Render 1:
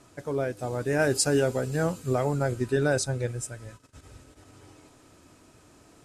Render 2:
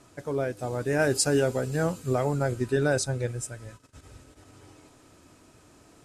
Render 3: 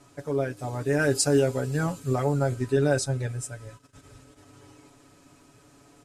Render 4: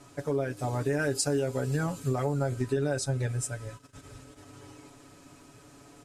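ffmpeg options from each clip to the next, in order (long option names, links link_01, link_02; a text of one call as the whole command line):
ffmpeg -i in.wav -af anull out.wav
ffmpeg -i in.wav -af "aecho=1:1:7.1:0.73,volume=-2dB" out.wav
ffmpeg -i in.wav -af "acompressor=threshold=-28dB:ratio=5,volume=2.5dB" out.wav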